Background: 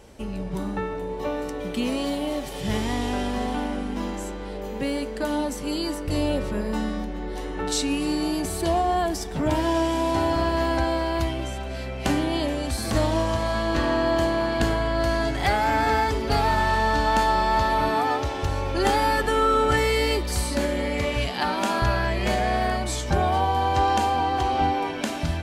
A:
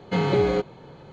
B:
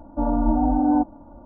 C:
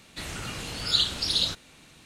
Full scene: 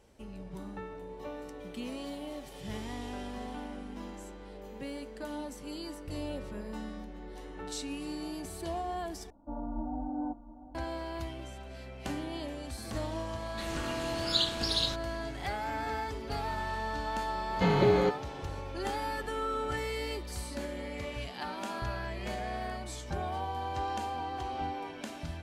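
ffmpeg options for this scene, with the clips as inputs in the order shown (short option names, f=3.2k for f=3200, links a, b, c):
-filter_complex "[0:a]volume=-13.5dB[a];[2:a]aecho=1:1:697:0.178[b];[3:a]equalizer=f=8.8k:w=1.5:g=-2.5[c];[a]asplit=2[d][e];[d]atrim=end=9.304[f];[b]atrim=end=1.45,asetpts=PTS-STARTPTS,volume=-16.5dB[g];[e]atrim=start=10.746[h];[c]atrim=end=2.05,asetpts=PTS-STARTPTS,volume=-5dB,afade=t=in:d=0.004:c=hsin,afade=t=out:st=2.046:d=0.004:c=hsin,adelay=13410[i];[1:a]atrim=end=1.12,asetpts=PTS-STARTPTS,volume=-3.5dB,afade=t=in:d=0.004:c=hsin,afade=t=out:st=1.116:d=0.004:c=hsin,adelay=17490[j];[f][g]acrossfade=d=0.004:c1=hsin:c2=hsin[k];[k][h]acrossfade=d=0.004:c1=hsin:c2=hsin[l];[l][i][j]amix=inputs=3:normalize=0"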